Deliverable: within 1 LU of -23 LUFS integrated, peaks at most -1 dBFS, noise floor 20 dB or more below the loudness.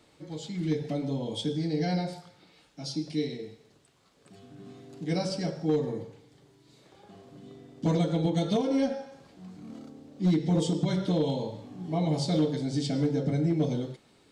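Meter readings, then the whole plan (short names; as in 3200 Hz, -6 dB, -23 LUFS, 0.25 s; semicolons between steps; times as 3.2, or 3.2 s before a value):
clipped 0.3%; flat tops at -18.5 dBFS; loudness -29.5 LUFS; peak -18.5 dBFS; loudness target -23.0 LUFS
-> clip repair -18.5 dBFS; gain +6.5 dB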